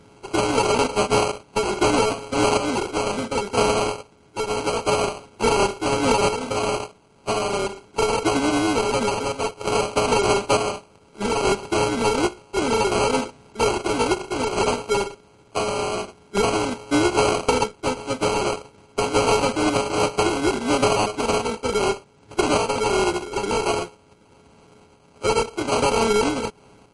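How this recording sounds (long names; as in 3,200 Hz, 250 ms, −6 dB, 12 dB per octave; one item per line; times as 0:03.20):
a buzz of ramps at a fixed pitch in blocks of 32 samples
sample-and-hold tremolo
aliases and images of a low sample rate 1,800 Hz, jitter 0%
MP3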